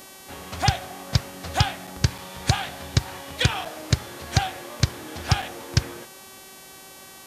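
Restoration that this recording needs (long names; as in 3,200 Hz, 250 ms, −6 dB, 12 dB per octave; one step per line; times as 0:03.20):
hum removal 382.6 Hz, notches 36
repair the gap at 0:01.87/0:02.18/0:03.65/0:05.42, 4.9 ms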